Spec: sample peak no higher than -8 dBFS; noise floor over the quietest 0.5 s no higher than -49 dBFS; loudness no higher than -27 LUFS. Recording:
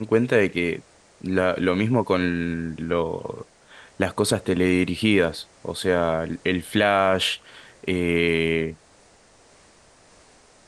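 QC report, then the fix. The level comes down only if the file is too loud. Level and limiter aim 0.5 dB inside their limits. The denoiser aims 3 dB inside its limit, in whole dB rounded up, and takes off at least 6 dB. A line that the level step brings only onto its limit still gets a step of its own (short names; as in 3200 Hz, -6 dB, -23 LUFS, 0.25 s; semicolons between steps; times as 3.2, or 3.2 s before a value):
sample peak -4.5 dBFS: fail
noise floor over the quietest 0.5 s -54 dBFS: OK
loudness -23.0 LUFS: fail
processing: gain -4.5 dB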